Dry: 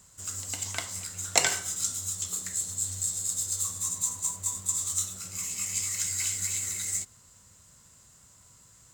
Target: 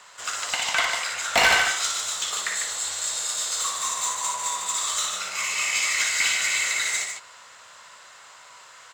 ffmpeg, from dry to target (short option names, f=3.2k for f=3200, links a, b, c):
-filter_complex "[0:a]acrossover=split=510 4000:gain=0.1 1 0.112[a][b][c];[a][b][c]amix=inputs=3:normalize=0,asplit=2[d][e];[e]highpass=f=720:p=1,volume=26dB,asoftclip=type=tanh:threshold=-9.5dB[f];[d][f]amix=inputs=2:normalize=0,lowpass=f=6k:p=1,volume=-6dB,aecho=1:1:58.31|148.7:0.562|0.501"